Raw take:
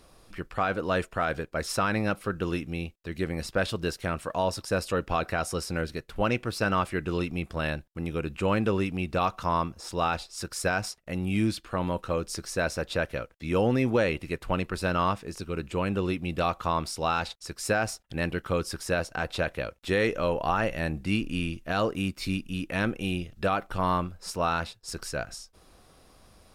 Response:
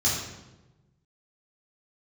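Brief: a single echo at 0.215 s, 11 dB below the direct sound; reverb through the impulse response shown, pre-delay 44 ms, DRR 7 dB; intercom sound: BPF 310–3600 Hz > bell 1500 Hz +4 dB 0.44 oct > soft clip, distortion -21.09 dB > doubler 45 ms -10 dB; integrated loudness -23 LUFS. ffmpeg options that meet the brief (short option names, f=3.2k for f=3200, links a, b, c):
-filter_complex "[0:a]aecho=1:1:215:0.282,asplit=2[a][b];[1:a]atrim=start_sample=2205,adelay=44[c];[b][c]afir=irnorm=-1:irlink=0,volume=-18.5dB[d];[a][d]amix=inputs=2:normalize=0,highpass=310,lowpass=3.6k,equalizer=f=1.5k:t=o:w=0.44:g=4,asoftclip=threshold=-14.5dB,asplit=2[e][f];[f]adelay=45,volume=-10dB[g];[e][g]amix=inputs=2:normalize=0,volume=6.5dB"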